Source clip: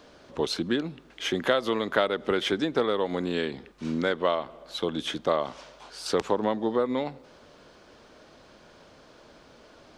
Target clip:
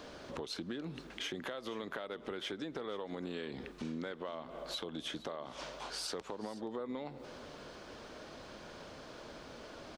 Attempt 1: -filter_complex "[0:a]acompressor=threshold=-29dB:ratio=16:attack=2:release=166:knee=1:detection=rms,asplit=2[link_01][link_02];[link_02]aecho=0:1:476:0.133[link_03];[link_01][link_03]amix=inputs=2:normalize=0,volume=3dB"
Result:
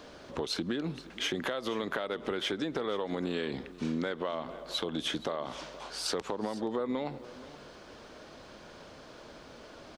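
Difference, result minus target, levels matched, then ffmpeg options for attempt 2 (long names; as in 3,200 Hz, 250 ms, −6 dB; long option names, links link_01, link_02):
downward compressor: peak gain reduction −8 dB
-filter_complex "[0:a]acompressor=threshold=-37.5dB:ratio=16:attack=2:release=166:knee=1:detection=rms,asplit=2[link_01][link_02];[link_02]aecho=0:1:476:0.133[link_03];[link_01][link_03]amix=inputs=2:normalize=0,volume=3dB"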